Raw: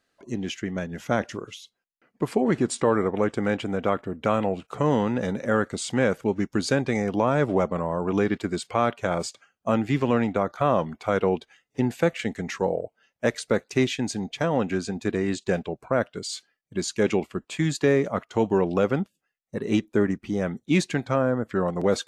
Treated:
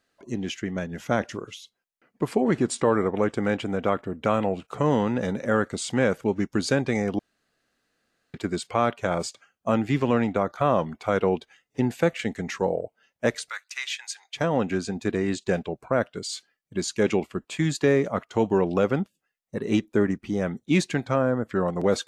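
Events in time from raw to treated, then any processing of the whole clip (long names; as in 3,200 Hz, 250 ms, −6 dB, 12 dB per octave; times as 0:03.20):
0:07.19–0:08.34: fill with room tone
0:13.49–0:14.35: inverse Chebyshev high-pass filter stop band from 210 Hz, stop band 80 dB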